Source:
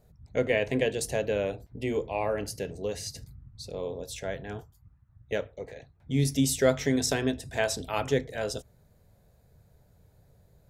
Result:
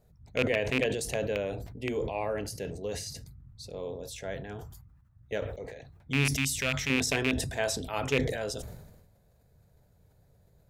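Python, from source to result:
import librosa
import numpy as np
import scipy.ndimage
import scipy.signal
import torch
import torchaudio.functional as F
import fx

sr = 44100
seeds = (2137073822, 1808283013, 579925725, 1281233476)

y = fx.rattle_buzz(x, sr, strikes_db=-29.0, level_db=-13.0)
y = fx.peak_eq(y, sr, hz=440.0, db=-12.5, octaves=1.7, at=(6.36, 6.9))
y = fx.sustainer(y, sr, db_per_s=49.0)
y = y * librosa.db_to_amplitude(-3.5)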